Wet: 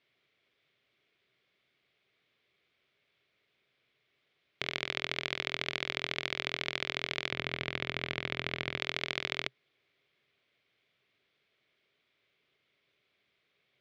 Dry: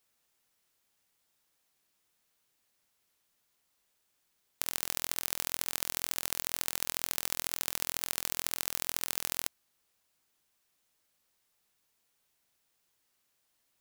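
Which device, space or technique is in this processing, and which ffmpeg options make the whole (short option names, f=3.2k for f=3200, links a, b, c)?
ring modulator pedal into a guitar cabinet: -filter_complex "[0:a]aeval=exprs='val(0)*sgn(sin(2*PI*490*n/s))':c=same,highpass=75,equalizer=f=130:t=q:w=4:g=8,equalizer=f=400:t=q:w=4:g=9,equalizer=f=610:t=q:w=4:g=4,equalizer=f=880:t=q:w=4:g=-9,equalizer=f=2.2k:t=q:w=4:g=9,equalizer=f=3.4k:t=q:w=4:g=5,lowpass=f=3.9k:w=0.5412,lowpass=f=3.9k:w=1.3066,asettb=1/sr,asplit=3[a][b][c];[a]atrim=end=7.314[d];[b]atrim=start=7.31:end=8.8,asetpts=PTS-STARTPTS,afade=t=in:d=0.004:c=qsin,afade=t=out:st=1.486:d=0.004:c=qsin,bass=f=250:g=7,treble=f=4k:g=-9[e];[c]atrim=start=8.796[f];[d][e]acrossfade=d=0.004:c1=hsin:c2=qsin[g];[g][f]acrossfade=d=0.004:c1=qsin:c2=hsin,volume=3dB"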